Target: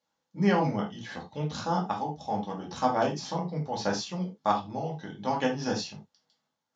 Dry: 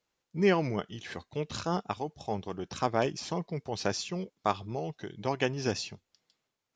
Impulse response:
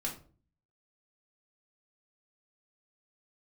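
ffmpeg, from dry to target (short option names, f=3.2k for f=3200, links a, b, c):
-filter_complex "[0:a]highpass=100,equalizer=f=340:t=q:w=4:g=-7,equalizer=f=870:t=q:w=4:g=6,equalizer=f=2.4k:t=q:w=4:g=-8,lowpass=f=7.4k:w=0.5412,lowpass=f=7.4k:w=1.3066[a];[1:a]atrim=start_sample=2205,afade=t=out:st=0.15:d=0.01,atrim=end_sample=7056[b];[a][b]afir=irnorm=-1:irlink=0"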